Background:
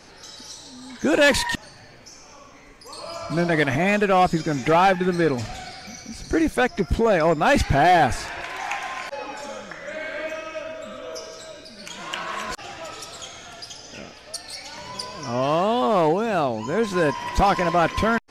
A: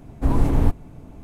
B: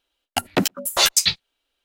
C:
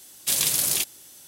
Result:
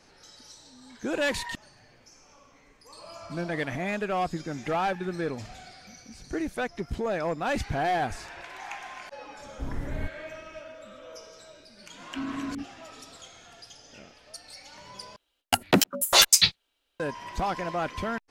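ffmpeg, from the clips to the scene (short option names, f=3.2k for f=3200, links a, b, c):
-filter_complex "[1:a]asplit=2[a][b];[0:a]volume=-10.5dB[c];[b]asplit=3[d][e][f];[d]bandpass=f=270:t=q:w=8,volume=0dB[g];[e]bandpass=f=2.29k:t=q:w=8,volume=-6dB[h];[f]bandpass=f=3.01k:t=q:w=8,volume=-9dB[i];[g][h][i]amix=inputs=3:normalize=0[j];[c]asplit=2[k][l];[k]atrim=end=15.164[m];[2:a]atrim=end=1.84,asetpts=PTS-STARTPTS,volume=-0.5dB[n];[l]atrim=start=16.996[o];[a]atrim=end=1.23,asetpts=PTS-STARTPTS,volume=-15dB,afade=t=in:d=0.004:c=hsin,afade=t=out:st=1.226:d=0.004:c=hsin,adelay=9370[p];[j]atrim=end=1.23,asetpts=PTS-STARTPTS,volume=-4.5dB,afade=t=in:d=0.004:c=hsin,afade=t=out:st=1.226:d=0.004:c=hsin,adelay=11930[q];[m][n]acrossfade=d=0.004:c1=hsin:c2=hsin[r];[r][o]acrossfade=d=0.004:c1=hsin:c2=hsin[s];[s][p][q]amix=inputs=3:normalize=0"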